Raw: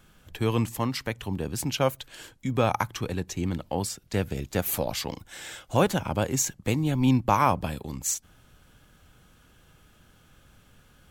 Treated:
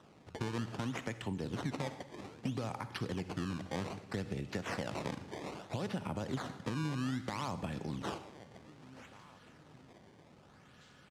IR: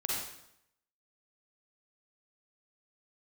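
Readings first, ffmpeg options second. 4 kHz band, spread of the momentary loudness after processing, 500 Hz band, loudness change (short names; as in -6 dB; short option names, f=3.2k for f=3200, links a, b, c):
-11.0 dB, 19 LU, -13.0 dB, -12.5 dB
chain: -filter_complex "[0:a]equalizer=f=1.7k:t=o:w=0.29:g=7.5,bandreject=f=1.6k:w=7.8,alimiter=limit=-17.5dB:level=0:latency=1:release=160,aecho=1:1:918|1836|2754:0.0631|0.0328|0.0171,acrossover=split=300[a][b];[b]acompressor=threshold=-44dB:ratio=1.5[c];[a][c]amix=inputs=2:normalize=0,acrusher=samples=19:mix=1:aa=0.000001:lfo=1:lforange=30.4:lforate=0.62,asplit=2[d][e];[1:a]atrim=start_sample=2205[f];[e][f]afir=irnorm=-1:irlink=0,volume=-15dB[g];[d][g]amix=inputs=2:normalize=0,acompressor=threshold=-30dB:ratio=6,highpass=120,lowpass=7k,volume=-2dB"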